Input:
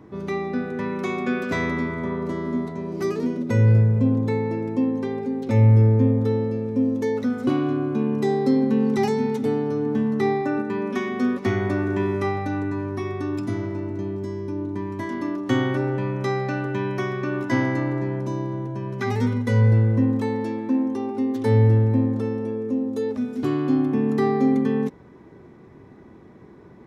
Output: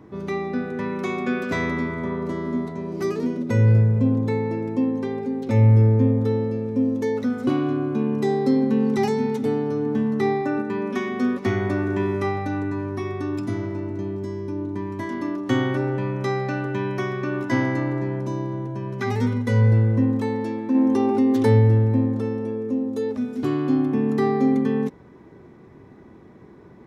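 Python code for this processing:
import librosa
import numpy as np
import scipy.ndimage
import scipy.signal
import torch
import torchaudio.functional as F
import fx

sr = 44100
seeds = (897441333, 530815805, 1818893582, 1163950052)

y = fx.env_flatten(x, sr, amount_pct=50, at=(20.74, 21.59), fade=0.02)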